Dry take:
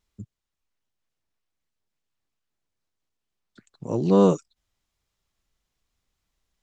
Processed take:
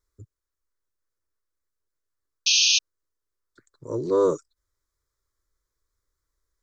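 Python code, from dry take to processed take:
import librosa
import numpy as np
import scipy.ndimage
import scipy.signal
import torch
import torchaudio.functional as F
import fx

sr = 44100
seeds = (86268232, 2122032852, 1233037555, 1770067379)

y = fx.fixed_phaser(x, sr, hz=750.0, stages=6)
y = fx.spec_paint(y, sr, seeds[0], shape='noise', start_s=2.46, length_s=0.33, low_hz=2400.0, high_hz=6600.0, level_db=-19.0)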